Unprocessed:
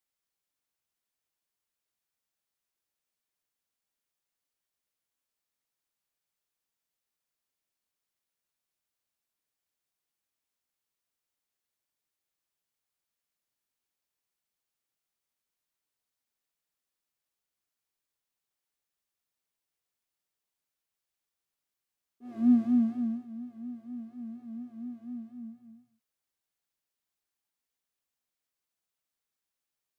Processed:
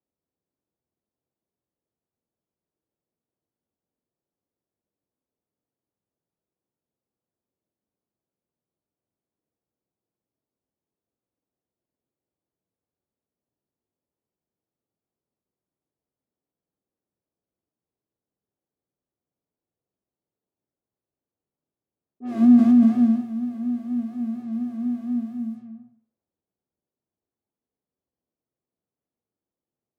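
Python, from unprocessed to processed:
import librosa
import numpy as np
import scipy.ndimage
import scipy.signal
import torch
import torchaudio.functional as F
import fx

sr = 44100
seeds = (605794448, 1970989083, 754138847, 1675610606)

p1 = scipy.signal.sosfilt(scipy.signal.butter(2, 63.0, 'highpass', fs=sr, output='sos'), x)
p2 = fx.low_shelf(p1, sr, hz=160.0, db=-4.5)
p3 = fx.room_flutter(p2, sr, wall_m=8.5, rt60_s=0.35)
p4 = fx.env_lowpass(p3, sr, base_hz=400.0, full_db=-40.5)
p5 = fx.over_compress(p4, sr, threshold_db=-27.0, ratio=-0.5)
p6 = p4 + F.gain(torch.from_numpy(p5), -2.5).numpy()
y = F.gain(torch.from_numpy(p6), 7.5).numpy()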